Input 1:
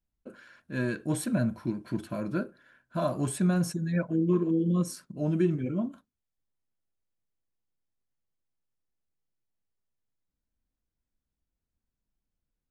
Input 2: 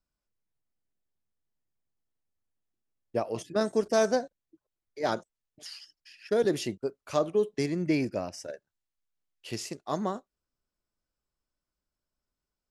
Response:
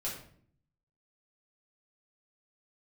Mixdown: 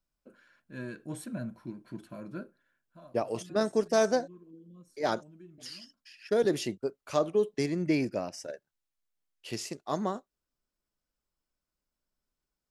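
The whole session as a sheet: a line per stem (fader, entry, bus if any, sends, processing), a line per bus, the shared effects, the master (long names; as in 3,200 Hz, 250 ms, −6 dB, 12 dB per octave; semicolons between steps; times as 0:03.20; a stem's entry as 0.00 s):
−9.5 dB, 0.00 s, no send, automatic ducking −17 dB, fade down 0.70 s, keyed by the second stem
−0.5 dB, 0.00 s, no send, no processing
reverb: not used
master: parametric band 86 Hz −8 dB 0.44 octaves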